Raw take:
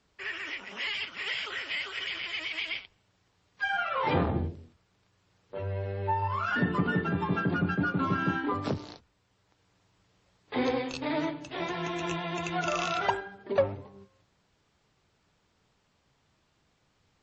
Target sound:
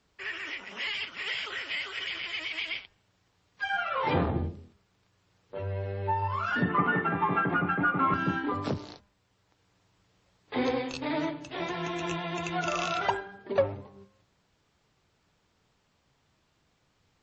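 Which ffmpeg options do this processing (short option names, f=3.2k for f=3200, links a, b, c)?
-filter_complex "[0:a]asettb=1/sr,asplit=3[a][b][c];[a]atrim=end=6.694[d];[b]atrim=start=6.69:end=8.14,asetpts=PTS-STARTPTS,afade=t=in:d=0.004:c=qsin,afade=t=out:st=1.446:d=0.004:c=qsin,highpass=140,equalizer=f=200:t=q:w=4:g=-4,equalizer=f=800:t=q:w=4:g=8,equalizer=f=1.2k:t=q:w=4:g=10,equalizer=f=2.1k:t=q:w=4:g=9,lowpass=f=3.1k:w=0.5412,lowpass=f=3.1k:w=1.3066[e];[c]atrim=start=8.136[f];[d][e]acrossfade=d=0.004:c1=hsin:c2=qsin[g];[g][f]acrossfade=d=0.004:c1=qsin:c2=hsin,bandreject=f=201.9:t=h:w=4,bandreject=f=403.8:t=h:w=4,bandreject=f=605.7:t=h:w=4,bandreject=f=807.6:t=h:w=4,bandreject=f=1.0095k:t=h:w=4,bandreject=f=1.2114k:t=h:w=4,bandreject=f=1.4133k:t=h:w=4,bandreject=f=1.6152k:t=h:w=4,bandreject=f=1.8171k:t=h:w=4,bandreject=f=2.019k:t=h:w=4"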